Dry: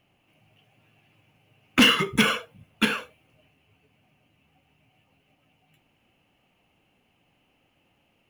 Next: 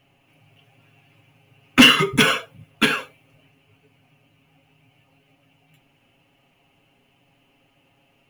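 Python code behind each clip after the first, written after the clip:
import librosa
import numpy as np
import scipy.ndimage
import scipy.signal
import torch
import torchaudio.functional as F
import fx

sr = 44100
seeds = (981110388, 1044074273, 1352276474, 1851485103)

y = x + 0.65 * np.pad(x, (int(7.3 * sr / 1000.0), 0))[:len(x)]
y = F.gain(torch.from_numpy(y), 4.0).numpy()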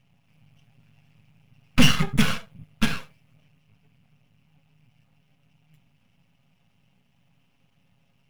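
y = np.maximum(x, 0.0)
y = fx.low_shelf_res(y, sr, hz=250.0, db=7.5, q=3.0)
y = F.gain(torch.from_numpy(y), -4.5).numpy()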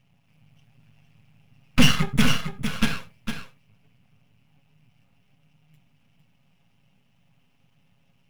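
y = x + 10.0 ** (-8.0 / 20.0) * np.pad(x, (int(455 * sr / 1000.0), 0))[:len(x)]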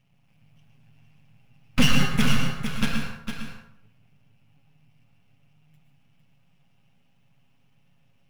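y = fx.rev_plate(x, sr, seeds[0], rt60_s=0.67, hf_ratio=0.6, predelay_ms=100, drr_db=3.0)
y = F.gain(torch.from_numpy(y), -3.0).numpy()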